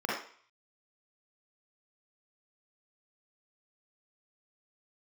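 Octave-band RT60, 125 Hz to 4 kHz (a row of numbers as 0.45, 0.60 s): 0.40, 0.40, 0.45, 0.55, 0.55, 0.55 s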